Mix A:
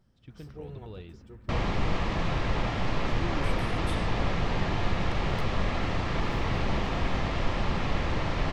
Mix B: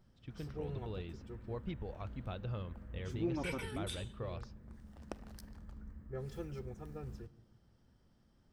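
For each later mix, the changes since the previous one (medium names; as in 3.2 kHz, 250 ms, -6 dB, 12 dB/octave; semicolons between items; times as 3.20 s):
second sound: muted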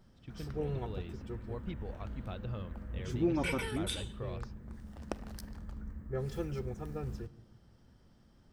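background +6.5 dB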